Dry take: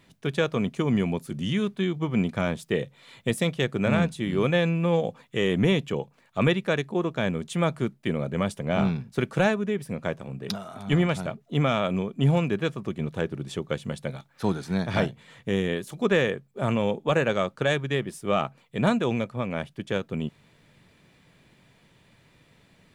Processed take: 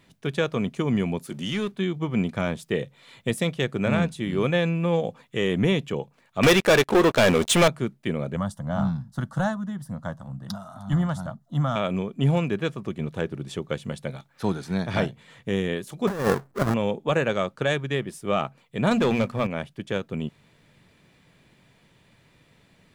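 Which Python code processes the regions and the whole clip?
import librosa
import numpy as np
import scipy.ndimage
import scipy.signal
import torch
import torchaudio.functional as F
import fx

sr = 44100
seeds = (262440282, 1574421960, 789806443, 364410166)

y = fx.chain(x, sr, fx.highpass(hz=330.0, slope=6),
    fx.leveller(passes=1), at=(1.23, 1.72))
y = fx.chain(y, sr, fx.peak_eq(hz=150.0, db=-12.0, octaves=1.6),
    fx.leveller(passes=5),
    fx.notch(hz=4500.0, q=25.0), at=(6.43, 7.68))
y = fx.chain(y, sr, fx.bass_treble(bass_db=3, treble_db=-2),
    fx.fixed_phaser(hz=1000.0, stages=4), at=(8.36, 11.76))
y = fx.chain(y, sr, fx.halfwave_hold(),
    fx.high_shelf_res(hz=2000.0, db=-7.0, q=1.5),
    fx.over_compress(threshold_db=-22.0, ratio=-0.5), at=(16.07, 16.74))
y = fx.chain(y, sr, fx.peak_eq(hz=310.0, db=-4.5, octaves=0.39),
    fx.hum_notches(base_hz=60, count=4),
    fx.leveller(passes=2), at=(18.91, 19.47))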